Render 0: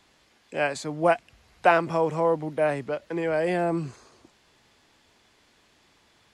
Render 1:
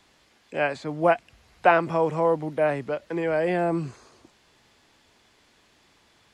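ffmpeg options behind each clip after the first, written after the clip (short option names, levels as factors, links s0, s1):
-filter_complex "[0:a]acrossover=split=3800[s0][s1];[s1]acompressor=threshold=0.00178:ratio=4:attack=1:release=60[s2];[s0][s2]amix=inputs=2:normalize=0,volume=1.12"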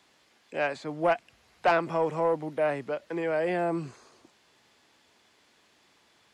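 -af "highpass=f=190:p=1,asoftclip=type=tanh:threshold=0.237,volume=0.75"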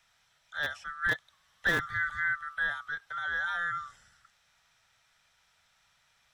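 -filter_complex "[0:a]afftfilt=real='real(if(lt(b,960),b+48*(1-2*mod(floor(b/48),2)),b),0)':imag='imag(if(lt(b,960),b+48*(1-2*mod(floor(b/48),2)),b),0)':win_size=2048:overlap=0.75,acrossover=split=190|610|3100[s0][s1][s2][s3];[s1]acrusher=bits=4:mix=0:aa=0.000001[s4];[s0][s4][s2][s3]amix=inputs=4:normalize=0,volume=0.596"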